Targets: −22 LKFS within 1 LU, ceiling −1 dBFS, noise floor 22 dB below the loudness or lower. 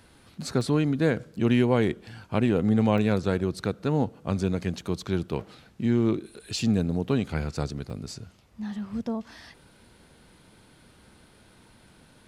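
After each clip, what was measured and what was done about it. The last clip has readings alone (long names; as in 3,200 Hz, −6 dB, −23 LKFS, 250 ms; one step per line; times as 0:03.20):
number of dropouts 4; longest dropout 1.7 ms; integrated loudness −27.0 LKFS; sample peak −9.0 dBFS; target loudness −22.0 LKFS
→ repair the gap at 0:00.61/0:02.98/0:05.41/0:07.90, 1.7 ms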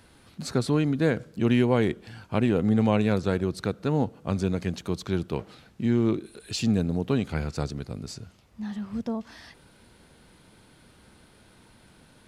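number of dropouts 0; integrated loudness −27.0 LKFS; sample peak −9.0 dBFS; target loudness −22.0 LKFS
→ level +5 dB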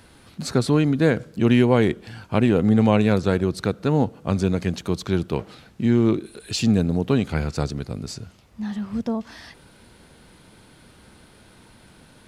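integrated loudness −22.0 LKFS; sample peak −4.0 dBFS; background noise floor −52 dBFS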